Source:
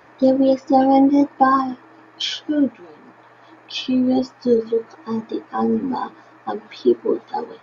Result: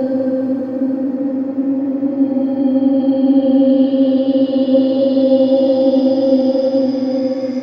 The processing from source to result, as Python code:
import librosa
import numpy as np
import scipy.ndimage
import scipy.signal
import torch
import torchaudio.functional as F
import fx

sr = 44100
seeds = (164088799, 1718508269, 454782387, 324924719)

y = fx.chorus_voices(x, sr, voices=2, hz=0.4, base_ms=12, depth_ms=3.9, mix_pct=25)
y = fx.dmg_crackle(y, sr, seeds[0], per_s=13.0, level_db=-44.0)
y = fx.paulstretch(y, sr, seeds[1], factor=33.0, window_s=0.1, from_s=0.33)
y = y * 10.0 ** (3.0 / 20.0)